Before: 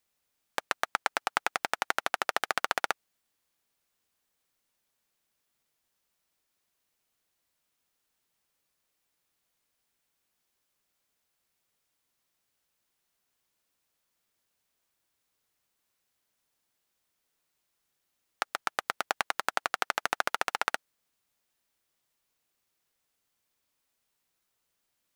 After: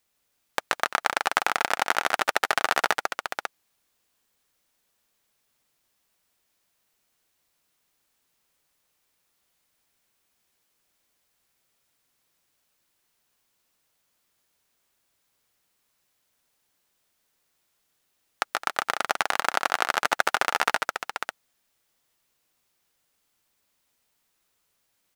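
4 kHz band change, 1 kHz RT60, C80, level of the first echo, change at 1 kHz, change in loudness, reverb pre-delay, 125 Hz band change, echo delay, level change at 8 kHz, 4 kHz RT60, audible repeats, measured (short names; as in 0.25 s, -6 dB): +6.5 dB, none, none, -5.5 dB, +6.5 dB, +5.5 dB, none, +6.0 dB, 0.147 s, +6.5 dB, none, 3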